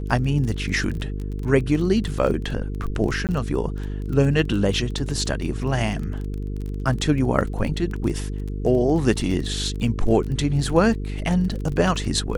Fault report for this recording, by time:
buzz 50 Hz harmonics 9 -28 dBFS
crackle 23 per s -28 dBFS
3.27–3.29 s: dropout 18 ms

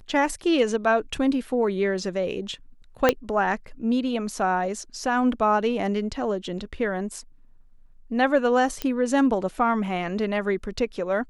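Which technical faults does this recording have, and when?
3.09 s: pop -4 dBFS
8.82 s: pop -13 dBFS

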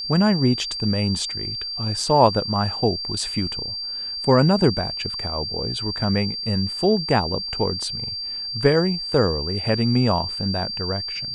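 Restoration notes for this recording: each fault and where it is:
whine 4.7 kHz -27 dBFS

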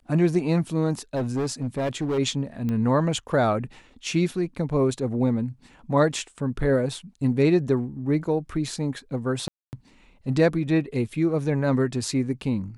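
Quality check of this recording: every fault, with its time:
1.15–2.19 s: clipped -22 dBFS
2.69 s: pop -18 dBFS
9.48–9.73 s: dropout 249 ms

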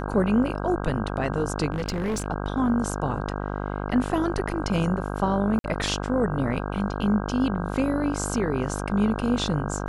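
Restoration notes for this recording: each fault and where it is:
buzz 50 Hz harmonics 32 -30 dBFS
1.72–2.26 s: clipped -23 dBFS
5.59–5.64 s: dropout 52 ms

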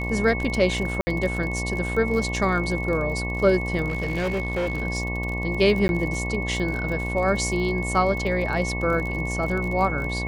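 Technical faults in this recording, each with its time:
buzz 60 Hz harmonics 19 -29 dBFS
crackle 37 per s -29 dBFS
whine 2.2 kHz -30 dBFS
1.01–1.07 s: dropout 60 ms
3.88–4.83 s: clipped -21.5 dBFS
5.88–5.89 s: dropout 11 ms

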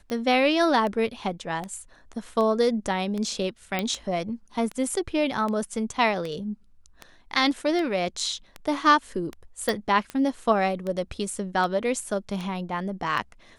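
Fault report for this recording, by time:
tick 78 rpm -19 dBFS
3.79 s: pop -12 dBFS
9.69 s: pop

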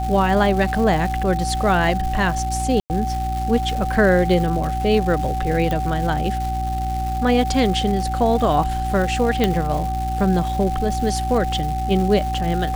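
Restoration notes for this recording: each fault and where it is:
crackle 450 per s -27 dBFS
hum 60 Hz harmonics 6 -25 dBFS
whine 760 Hz -24 dBFS
2.80–2.90 s: dropout 99 ms
5.71 s: pop
9.44 s: pop -5 dBFS

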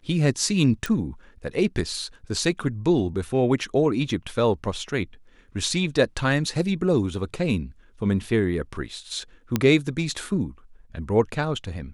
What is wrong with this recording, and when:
0.86 s: pop
9.56 s: pop -7 dBFS

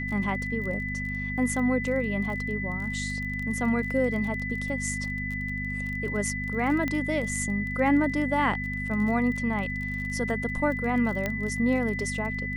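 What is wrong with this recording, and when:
crackle 25 per s -34 dBFS
hum 50 Hz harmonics 5 -34 dBFS
whine 2 kHz -32 dBFS
6.88 s: pop -16 dBFS
11.26 s: pop -14 dBFS

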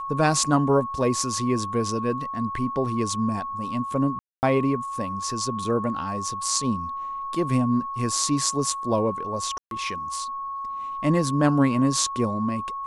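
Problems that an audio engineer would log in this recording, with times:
whine 1.1 kHz -29 dBFS
4.19–4.43 s: dropout 239 ms
9.58–9.71 s: dropout 132 ms

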